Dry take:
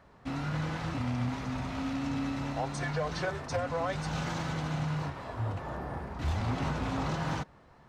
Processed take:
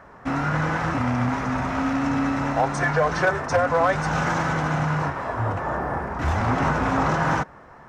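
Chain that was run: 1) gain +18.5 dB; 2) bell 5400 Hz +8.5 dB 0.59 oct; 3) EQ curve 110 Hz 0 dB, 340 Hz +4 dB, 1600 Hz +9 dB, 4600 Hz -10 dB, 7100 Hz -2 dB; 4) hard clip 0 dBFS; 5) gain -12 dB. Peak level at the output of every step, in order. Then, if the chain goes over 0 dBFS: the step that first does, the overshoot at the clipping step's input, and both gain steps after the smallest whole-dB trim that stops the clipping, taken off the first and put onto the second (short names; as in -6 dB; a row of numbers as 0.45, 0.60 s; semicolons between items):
-5.0, -2.5, +3.5, 0.0, -12.0 dBFS; step 3, 3.5 dB; step 1 +14.5 dB, step 5 -8 dB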